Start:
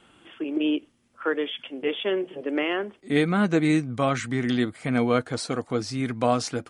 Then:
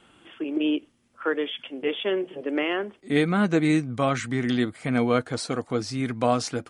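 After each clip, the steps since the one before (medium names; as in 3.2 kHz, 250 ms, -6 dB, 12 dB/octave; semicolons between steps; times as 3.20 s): no audible change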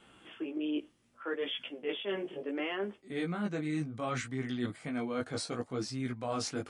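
chorus 0.68 Hz, delay 15 ms, depth 5.2 ms; reverse; compression, threshold -32 dBFS, peak gain reduction 12.5 dB; reverse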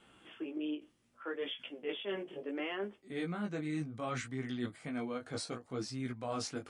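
endings held to a fixed fall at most 270 dB/s; trim -3 dB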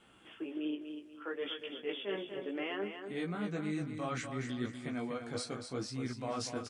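feedback delay 242 ms, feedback 34%, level -7.5 dB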